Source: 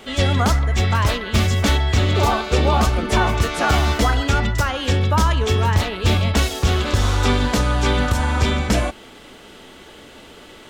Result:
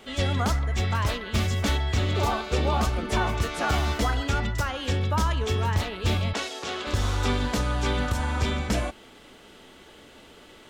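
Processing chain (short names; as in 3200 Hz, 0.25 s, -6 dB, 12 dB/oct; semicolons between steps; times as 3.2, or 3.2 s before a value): 6.33–6.87 BPF 360–7500 Hz; gain -7.5 dB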